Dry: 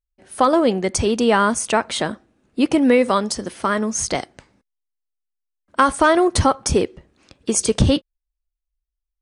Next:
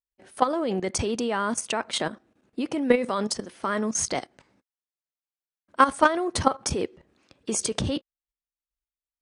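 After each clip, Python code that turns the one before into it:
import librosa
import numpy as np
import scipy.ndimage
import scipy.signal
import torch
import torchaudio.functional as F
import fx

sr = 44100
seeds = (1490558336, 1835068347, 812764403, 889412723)

y = fx.highpass(x, sr, hz=140.0, slope=6)
y = fx.high_shelf(y, sr, hz=6600.0, db=-4.5)
y = fx.level_steps(y, sr, step_db=13)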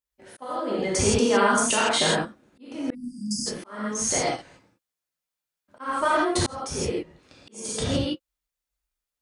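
y = fx.rev_gated(x, sr, seeds[0], gate_ms=190, shape='flat', drr_db=-6.5)
y = fx.spec_erase(y, sr, start_s=2.94, length_s=0.52, low_hz=320.0, high_hz=4600.0)
y = fx.auto_swell(y, sr, attack_ms=768.0)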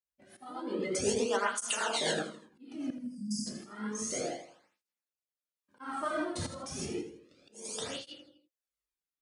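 y = fx.rotary_switch(x, sr, hz=8.0, then_hz=1.0, switch_at_s=2.78)
y = fx.echo_feedback(y, sr, ms=81, feedback_pct=40, wet_db=-10.0)
y = fx.flanger_cancel(y, sr, hz=0.31, depth_ms=2.7)
y = y * librosa.db_to_amplitude(-5.0)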